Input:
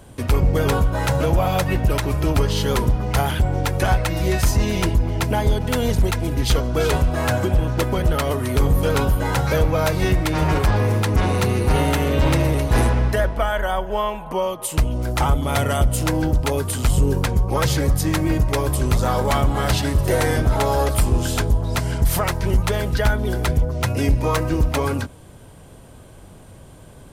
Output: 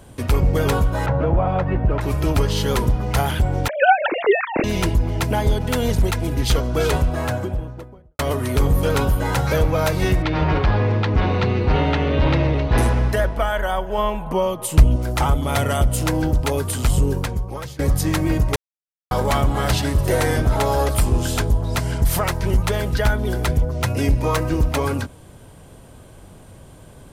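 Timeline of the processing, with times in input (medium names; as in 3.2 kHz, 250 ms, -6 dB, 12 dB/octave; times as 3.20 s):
1.06–2.01 s: low-pass 1.5 kHz
3.68–4.64 s: formants replaced by sine waves
6.85–8.19 s: studio fade out
10.22–12.78 s: low-pass 4.3 kHz 24 dB/octave
13.98–14.96 s: bass shelf 320 Hz +8 dB
16.96–17.79 s: fade out linear, to -23.5 dB
18.56–19.11 s: mute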